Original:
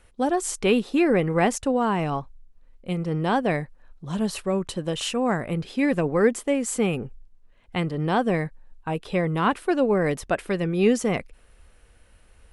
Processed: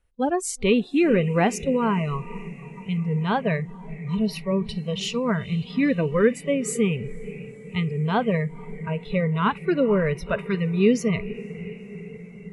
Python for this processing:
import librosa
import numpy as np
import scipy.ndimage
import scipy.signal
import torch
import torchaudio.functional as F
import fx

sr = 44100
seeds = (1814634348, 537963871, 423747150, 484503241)

y = fx.low_shelf(x, sr, hz=140.0, db=7.0)
y = fx.echo_diffused(y, sr, ms=487, feedback_pct=72, wet_db=-13)
y = fx.noise_reduce_blind(y, sr, reduce_db=19)